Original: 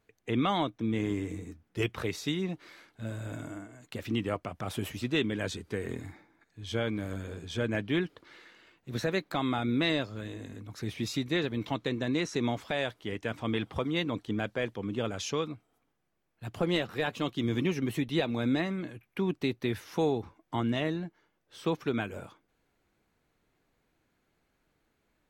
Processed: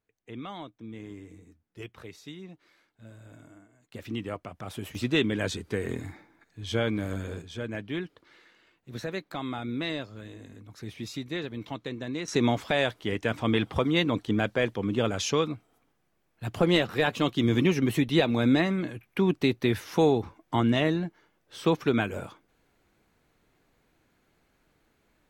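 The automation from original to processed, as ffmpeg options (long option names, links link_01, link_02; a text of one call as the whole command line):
ffmpeg -i in.wav -af "asetnsamples=nb_out_samples=441:pad=0,asendcmd='3.94 volume volume -3dB;4.95 volume volume 4dB;7.42 volume volume -4dB;12.28 volume volume 6dB',volume=-11.5dB" out.wav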